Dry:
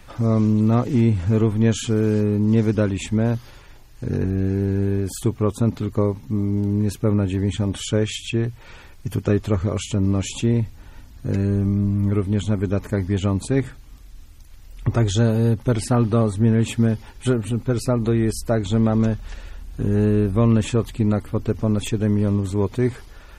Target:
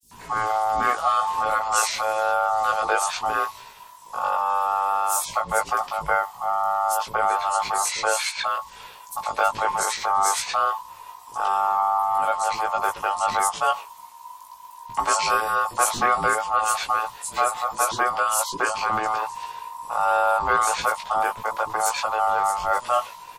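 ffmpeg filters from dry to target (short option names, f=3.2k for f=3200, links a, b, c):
-filter_complex "[0:a]highshelf=f=4k:g=10.5,bandreject=f=1.3k:w=12,aeval=exprs='val(0)*sin(2*PI*980*n/s)':c=same,asplit=2[a][b];[b]adelay=18,volume=-3dB[c];[a][c]amix=inputs=2:normalize=0,acrossover=split=300|5400[d][e][f];[d]adelay=30[g];[e]adelay=110[h];[g][h][f]amix=inputs=3:normalize=0,adynamicequalizer=threshold=0.0224:dfrequency=1900:dqfactor=0.7:tfrequency=1900:tqfactor=0.7:attack=5:release=100:ratio=0.375:range=2:mode=boostabove:tftype=highshelf,volume=-1.5dB"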